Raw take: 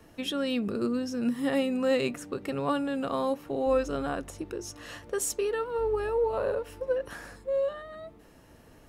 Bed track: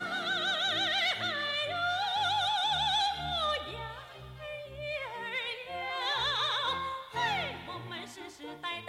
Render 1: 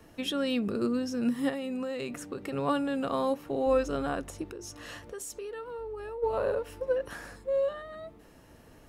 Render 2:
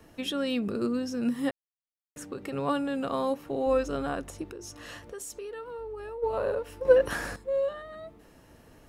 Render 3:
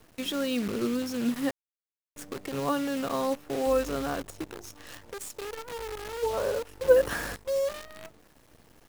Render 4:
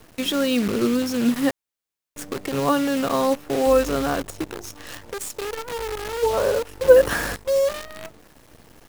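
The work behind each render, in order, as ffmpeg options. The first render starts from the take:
ffmpeg -i in.wav -filter_complex "[0:a]asettb=1/sr,asplit=3[link_01][link_02][link_03];[link_01]atrim=end=1.494[link_04];[link_02]atrim=start=1.49:end=2.53,asetpts=PTS-STARTPTS,afade=type=in:duration=0.004:curve=qsin,afade=type=out:start_time=1.036:duration=0.004:curve=qsin,acompressor=threshold=-30dB:ratio=10:attack=3.2:release=140:knee=1:detection=peak[link_05];[link_03]atrim=start=2.526[link_06];[link_04][link_05]acrossfade=duration=0.004:curve1=hsin:curve2=qsin[link_07];[link_07][link_06]acrossfade=duration=0.004:curve1=qsin:curve2=hsin,asplit=3[link_08][link_09][link_10];[link_08]afade=type=out:start_time=4.48:duration=0.02[link_11];[link_09]acompressor=threshold=-38dB:ratio=4:attack=3.2:release=140:knee=1:detection=peak,afade=type=in:start_time=4.48:duration=0.02,afade=type=out:start_time=6.22:duration=0.02[link_12];[link_10]afade=type=in:start_time=6.22:duration=0.02[link_13];[link_11][link_12][link_13]amix=inputs=3:normalize=0" out.wav
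ffmpeg -i in.wav -filter_complex "[0:a]asplit=5[link_01][link_02][link_03][link_04][link_05];[link_01]atrim=end=1.51,asetpts=PTS-STARTPTS,afade=type=out:start_time=1.506:duration=0.004:curve=hsin[link_06];[link_02]atrim=start=1.51:end=2.16,asetpts=PTS-STARTPTS,volume=0[link_07];[link_03]atrim=start=2.16:end=6.852,asetpts=PTS-STARTPTS,afade=type=in:duration=0.004:curve=hsin[link_08];[link_04]atrim=start=6.848:end=7.362,asetpts=PTS-STARTPTS,volume=9.5dB[link_09];[link_05]atrim=start=7.358[link_10];[link_06][link_07][link_08]concat=n=3:v=0:a=1[link_11];[link_11][link_09]acrossfade=duration=0.004:curve1=hsin:curve2=hsin[link_12];[link_12][link_10]acrossfade=duration=0.004:curve1=hsin:curve2=hsin" out.wav
ffmpeg -i in.wav -af "acrusher=bits=7:dc=4:mix=0:aa=0.000001" out.wav
ffmpeg -i in.wav -af "volume=8dB,alimiter=limit=-1dB:level=0:latency=1" out.wav

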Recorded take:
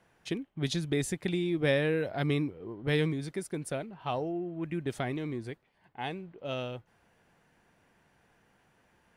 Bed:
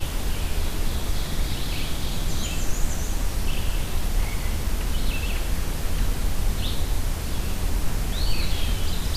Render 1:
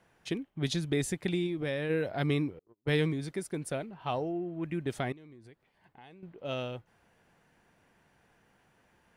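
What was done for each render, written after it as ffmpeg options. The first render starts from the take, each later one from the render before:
ffmpeg -i in.wav -filter_complex "[0:a]asplit=3[link_01][link_02][link_03];[link_01]afade=type=out:start_time=1.46:duration=0.02[link_04];[link_02]acompressor=threshold=-31dB:ratio=3:attack=3.2:release=140:knee=1:detection=peak,afade=type=in:start_time=1.46:duration=0.02,afade=type=out:start_time=1.89:duration=0.02[link_05];[link_03]afade=type=in:start_time=1.89:duration=0.02[link_06];[link_04][link_05][link_06]amix=inputs=3:normalize=0,asettb=1/sr,asplit=3[link_07][link_08][link_09];[link_07]atrim=end=2.594[link_10];[link_08]atrim=start=2.59:end=3.06,asetpts=PTS-STARTPTS,afade=type=in:duration=0.004:curve=qsin,afade=type=out:start_time=0.466:duration=0.004:curve=qsin,agate=range=-42dB:threshold=-37dB:ratio=16:release=100:detection=peak[link_11];[link_09]atrim=start=3.056[link_12];[link_10][link_11]acrossfade=duration=0.004:curve1=hsin:curve2=qsin[link_13];[link_13][link_12]acrossfade=duration=0.004:curve1=qsin:curve2=hsin,asettb=1/sr,asplit=3[link_14][link_15][link_16];[link_14]atrim=end=5.124[link_17];[link_15]atrim=start=5.12:end=6.23,asetpts=PTS-STARTPTS,afade=type=in:duration=0.004:curve=qsin,afade=type=out:start_time=1.106:duration=0.004:curve=qsin,acompressor=threshold=-53dB:ratio=4:attack=3.2:release=140:knee=1:detection=peak[link_18];[link_16]atrim=start=6.226[link_19];[link_17][link_18]acrossfade=duration=0.004:curve1=hsin:curve2=qsin[link_20];[link_20][link_19]acrossfade=duration=0.004:curve1=qsin:curve2=hsin" out.wav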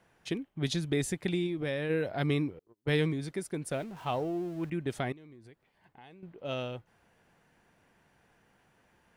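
ffmpeg -i in.wav -filter_complex "[0:a]asettb=1/sr,asplit=3[link_01][link_02][link_03];[link_01]atrim=end=3.714[link_04];[link_02]atrim=start=3.71:end=4.7,asetpts=PTS-STARTPTS,afade=type=in:duration=0.004:curve=qsin,afade=type=out:start_time=0.986:duration=0.004:curve=qsin,aeval=exprs='val(0)+0.5*0.00398*sgn(val(0))':channel_layout=same[link_05];[link_03]atrim=start=4.696[link_06];[link_04][link_05]acrossfade=duration=0.004:curve1=hsin:curve2=qsin[link_07];[link_07][link_06]acrossfade=duration=0.004:curve1=qsin:curve2=hsin" out.wav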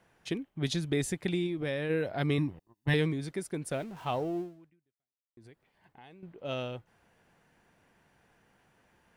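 ffmpeg -i in.wav -filter_complex "[0:a]asettb=1/sr,asplit=3[link_01][link_02][link_03];[link_01]atrim=end=2.384[link_04];[link_02]atrim=start=2.38:end=2.94,asetpts=PTS-STARTPTS,afade=type=in:duration=0.004:curve=qsin,afade=type=out:start_time=0.556:duration=0.004:curve=qsin,aecho=1:1:1.1:0.79,atrim=end_sample=24696[link_05];[link_03]atrim=start=2.936[link_06];[link_04][link_05]acrossfade=duration=0.004:curve1=hsin:curve2=qsin[link_07];[link_07][link_06]acrossfade=duration=0.004:curve1=qsin:curve2=hsin,asplit=2[link_08][link_09];[link_08]atrim=end=5.37,asetpts=PTS-STARTPTS,afade=type=out:start_time=4.4:duration=0.97:curve=exp[link_10];[link_09]atrim=start=5.37,asetpts=PTS-STARTPTS,afade=type=in:duration=0.004:curve=hsin[link_11];[link_10][link_11]concat=n=2:v=0:a=1" out.wav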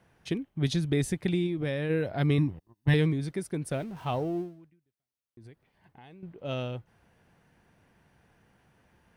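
ffmpeg -i in.wav -af "equalizer=frequency=77:width=0.39:gain=7.5,bandreject=frequency=7200:width=12" out.wav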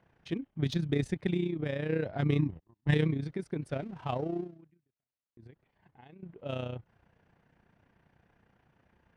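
ffmpeg -i in.wav -af "adynamicsmooth=sensitivity=3:basefreq=4400,tremolo=f=30:d=0.667" out.wav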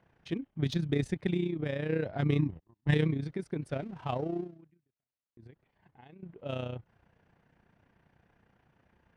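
ffmpeg -i in.wav -af anull out.wav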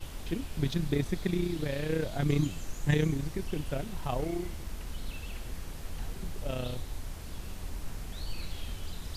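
ffmpeg -i in.wav -i bed.wav -filter_complex "[1:a]volume=-14dB[link_01];[0:a][link_01]amix=inputs=2:normalize=0" out.wav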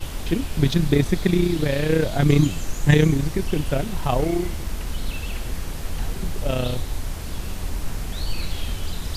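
ffmpeg -i in.wav -af "volume=11dB" out.wav

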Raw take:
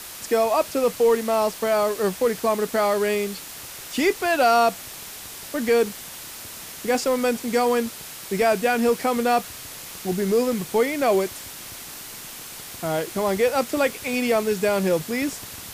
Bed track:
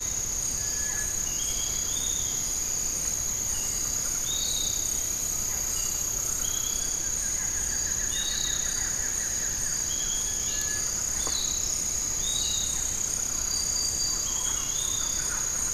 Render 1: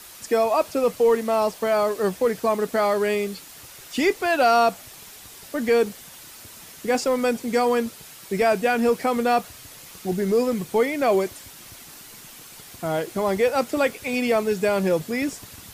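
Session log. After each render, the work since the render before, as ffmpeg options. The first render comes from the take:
ffmpeg -i in.wav -af "afftdn=noise_reduction=7:noise_floor=-38" out.wav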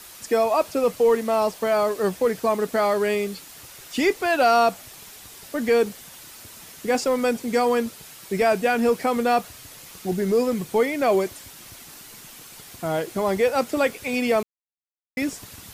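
ffmpeg -i in.wav -filter_complex "[0:a]asplit=3[link_01][link_02][link_03];[link_01]atrim=end=14.43,asetpts=PTS-STARTPTS,afade=type=out:start_time=14.426:duration=0.004:curve=hsin[link_04];[link_02]atrim=start=14.43:end=15.17,asetpts=PTS-STARTPTS,volume=0[link_05];[link_03]atrim=start=15.17,asetpts=PTS-STARTPTS,afade=type=in:duration=0.004:curve=hsin[link_06];[link_04][link_05][link_06]concat=n=3:v=0:a=1" out.wav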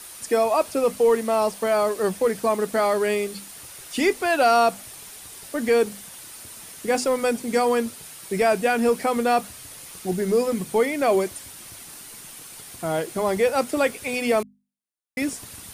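ffmpeg -i in.wav -af "equalizer=frequency=9400:width_type=o:width=0.21:gain=10,bandreject=frequency=50:width_type=h:width=6,bandreject=frequency=100:width_type=h:width=6,bandreject=frequency=150:width_type=h:width=6,bandreject=frequency=200:width_type=h:width=6,bandreject=frequency=250:width_type=h:width=6" out.wav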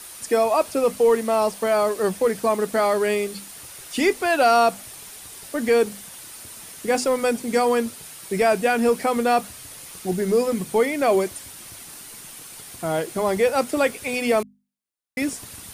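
ffmpeg -i in.wav -af "volume=1dB" out.wav

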